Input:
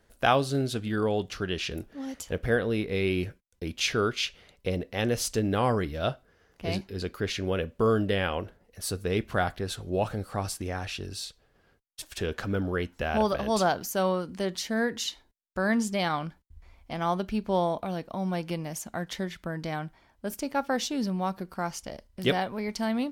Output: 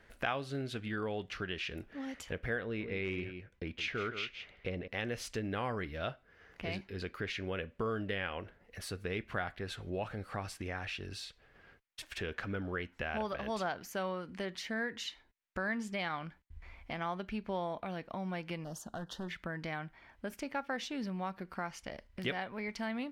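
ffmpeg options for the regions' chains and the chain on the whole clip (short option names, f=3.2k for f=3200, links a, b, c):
-filter_complex "[0:a]asettb=1/sr,asplit=3[a][b][c];[a]atrim=end=2.644[d];[b]atrim=start=2.64:end=4.88,asetpts=PTS-STARTPTS,afade=t=in:d=0.004:c=qsin,afade=t=out:st=2.236:d=0.004:c=qsin,aemphasis=mode=reproduction:type=50kf,aecho=1:1:166:0.266,atrim=end_sample=98784,volume=20dB,asoftclip=hard,volume=-20dB[e];[c]atrim=start=4.876[f];[d][e]acrossfade=d=0.004:c1=hsin:c2=qsin[g];[g][f]acrossfade=d=0.004:c1=qsin:c2=hsin,asettb=1/sr,asplit=3[h][i][j];[h]atrim=end=18.644[k];[i]atrim=start=18.64:end=19.29,asetpts=PTS-STARTPTS,afade=t=in:d=0.004:c=qsin,afade=t=out:st=0.646:d=0.004:c=qsin,asoftclip=type=hard:threshold=-31dB,asuperstop=centerf=2200:order=4:qfactor=1[l];[j]atrim=start=19.286[m];[k][l]acrossfade=d=0.004:c1=hsin:c2=qsin[n];[n][m]acrossfade=d=0.004:c1=qsin:c2=hsin,equalizer=f=2.1k:t=o:w=1.4:g=10,acompressor=threshold=-45dB:ratio=2,highshelf=f=5k:g=-9,volume=1dB"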